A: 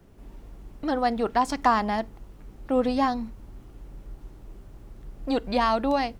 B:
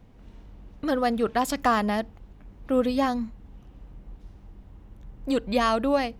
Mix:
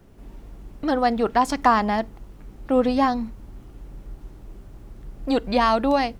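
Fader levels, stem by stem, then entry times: +2.5, -12.0 dB; 0.00, 0.00 s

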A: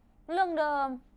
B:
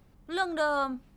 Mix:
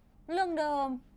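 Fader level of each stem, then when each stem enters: -2.5, -7.0 dB; 0.00, 0.00 s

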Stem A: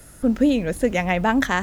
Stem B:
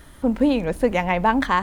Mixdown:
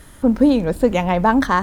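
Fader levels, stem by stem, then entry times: -4.5, +1.5 dB; 0.00, 0.00 s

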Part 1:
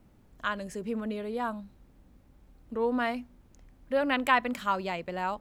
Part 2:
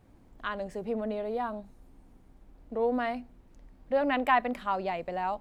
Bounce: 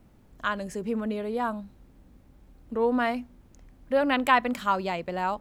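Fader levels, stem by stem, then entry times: +2.5, -12.0 dB; 0.00, 0.00 s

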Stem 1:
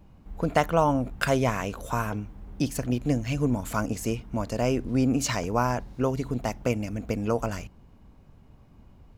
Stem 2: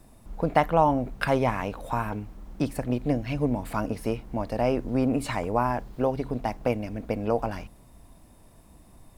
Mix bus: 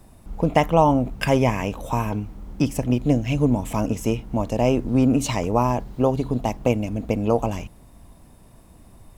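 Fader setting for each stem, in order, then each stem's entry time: -1.0, +2.5 dB; 0.00, 0.00 s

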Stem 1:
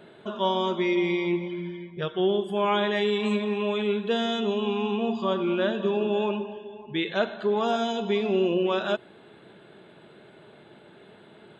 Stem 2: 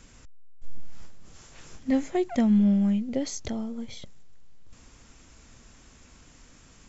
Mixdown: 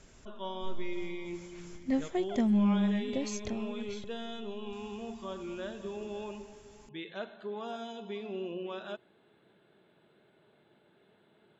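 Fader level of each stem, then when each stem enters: -14.5, -5.5 dB; 0.00, 0.00 s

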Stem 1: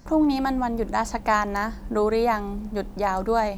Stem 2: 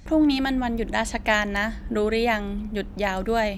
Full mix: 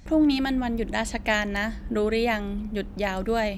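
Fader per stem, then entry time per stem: -15.0, -2.0 dB; 0.00, 0.00 s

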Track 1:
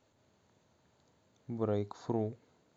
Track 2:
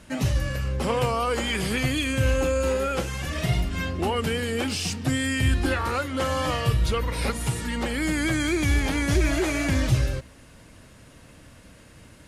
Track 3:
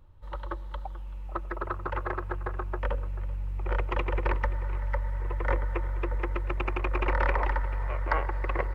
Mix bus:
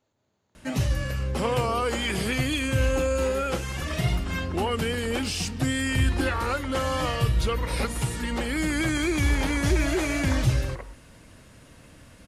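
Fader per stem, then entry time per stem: -4.0, -1.0, -11.0 dB; 0.00, 0.55, 2.20 s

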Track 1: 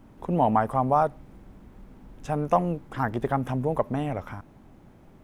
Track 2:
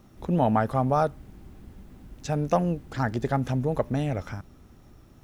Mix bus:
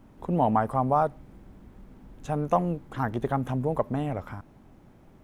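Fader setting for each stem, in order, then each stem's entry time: -2.0, -17.5 dB; 0.00, 0.00 s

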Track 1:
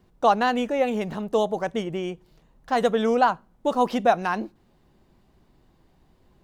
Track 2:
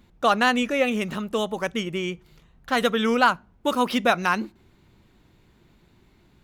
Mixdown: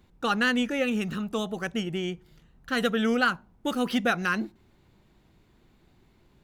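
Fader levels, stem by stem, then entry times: -6.0, -5.0 dB; 0.00, 0.00 s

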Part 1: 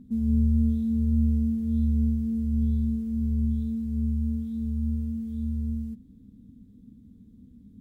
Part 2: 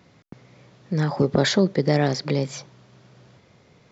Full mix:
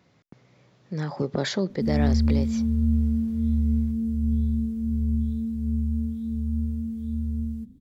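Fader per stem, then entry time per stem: +1.0, -7.0 dB; 1.70, 0.00 s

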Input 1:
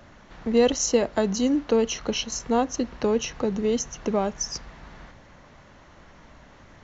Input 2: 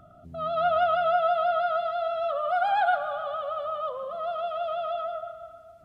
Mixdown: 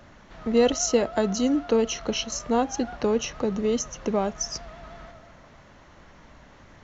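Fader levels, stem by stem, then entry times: -0.5, -17.0 dB; 0.00, 0.00 s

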